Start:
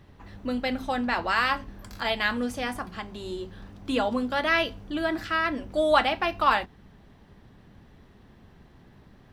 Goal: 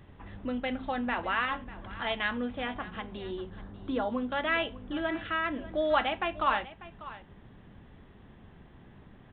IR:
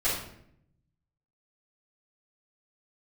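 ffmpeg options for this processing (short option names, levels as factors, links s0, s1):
-filter_complex "[0:a]asplit=2[s0][s1];[s1]acompressor=threshold=0.0126:ratio=6,volume=1.12[s2];[s0][s2]amix=inputs=2:normalize=0,asettb=1/sr,asplit=3[s3][s4][s5];[s3]atrim=end=1.454[s6];[s4]atrim=start=1.45:end=2.07,asetpts=PTS-STARTPTS,afade=t=in:d=0.004:c=qsin,afade=t=out:st=0.616:d=0.004:c=qsin,asoftclip=type=hard:threshold=0.1[s7];[s5]atrim=start=2.066[s8];[s6][s7]acrossfade=d=0.004:c1=hsin:c2=qsin[s9];[s9][s8]acrossfade=d=0.004:c1=qsin:c2=hsin,aresample=8000,aresample=44100,asettb=1/sr,asplit=3[s10][s11][s12];[s10]atrim=end=3.504[s13];[s11]atrim=start=3.5:end=4.1,asetpts=PTS-STARTPTS,afade=t=in:d=0.004:c=qsin,afade=t=out:st=0.596:d=0.004:c=qsin,equalizer=f=2700:t=o:w=0.64:g=-12[s14];[s12]atrim=start=4.096[s15];[s13][s14]acrossfade=d=0.004:c1=hsin:c2=qsin[s16];[s16][s15]acrossfade=d=0.004:c1=qsin:c2=hsin,aecho=1:1:594:0.15,volume=0.473"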